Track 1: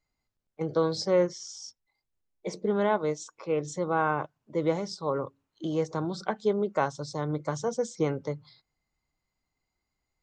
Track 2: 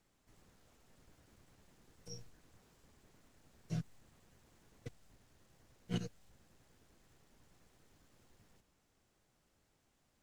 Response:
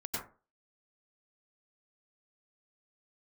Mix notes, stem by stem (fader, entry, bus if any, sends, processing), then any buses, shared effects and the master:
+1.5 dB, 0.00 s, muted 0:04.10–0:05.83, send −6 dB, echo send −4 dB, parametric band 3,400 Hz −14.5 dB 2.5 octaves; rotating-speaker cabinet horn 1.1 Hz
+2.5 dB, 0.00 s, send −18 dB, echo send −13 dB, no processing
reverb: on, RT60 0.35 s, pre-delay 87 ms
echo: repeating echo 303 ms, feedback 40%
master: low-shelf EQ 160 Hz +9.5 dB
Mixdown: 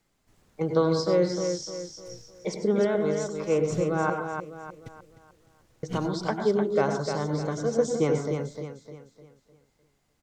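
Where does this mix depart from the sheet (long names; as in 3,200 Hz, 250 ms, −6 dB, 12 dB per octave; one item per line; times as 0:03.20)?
stem 1: missing parametric band 3,400 Hz −14.5 dB 2.5 octaves
master: missing low-shelf EQ 160 Hz +9.5 dB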